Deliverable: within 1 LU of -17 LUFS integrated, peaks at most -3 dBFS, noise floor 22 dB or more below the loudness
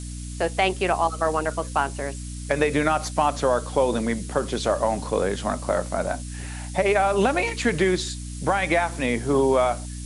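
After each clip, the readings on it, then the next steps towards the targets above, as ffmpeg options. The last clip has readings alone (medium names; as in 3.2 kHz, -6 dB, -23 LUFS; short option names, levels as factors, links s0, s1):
hum 60 Hz; highest harmonic 300 Hz; hum level -32 dBFS; noise floor -34 dBFS; noise floor target -46 dBFS; loudness -23.5 LUFS; peak level -6.0 dBFS; loudness target -17.0 LUFS
-> -af "bandreject=f=60:t=h:w=6,bandreject=f=120:t=h:w=6,bandreject=f=180:t=h:w=6,bandreject=f=240:t=h:w=6,bandreject=f=300:t=h:w=6"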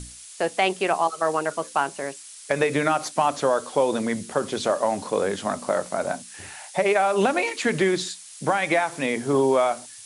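hum not found; noise floor -43 dBFS; noise floor target -46 dBFS
-> -af "afftdn=nr=6:nf=-43"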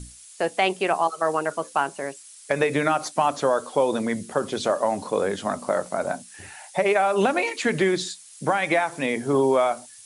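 noise floor -47 dBFS; loudness -24.0 LUFS; peak level -6.5 dBFS; loudness target -17.0 LUFS
-> -af "volume=2.24,alimiter=limit=0.708:level=0:latency=1"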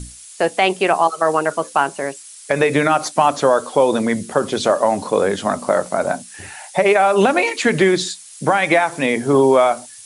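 loudness -17.0 LUFS; peak level -3.0 dBFS; noise floor -40 dBFS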